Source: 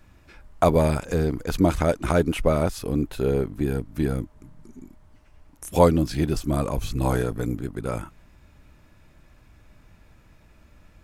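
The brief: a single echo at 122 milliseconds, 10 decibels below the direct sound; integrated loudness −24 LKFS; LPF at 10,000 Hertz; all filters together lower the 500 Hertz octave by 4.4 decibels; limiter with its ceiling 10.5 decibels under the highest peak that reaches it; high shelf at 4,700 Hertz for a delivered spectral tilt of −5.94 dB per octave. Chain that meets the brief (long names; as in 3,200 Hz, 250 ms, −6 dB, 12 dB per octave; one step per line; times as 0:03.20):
low-pass filter 10,000 Hz
parametric band 500 Hz −5.5 dB
high-shelf EQ 4,700 Hz +3.5 dB
brickwall limiter −17 dBFS
single-tap delay 122 ms −10 dB
level +5.5 dB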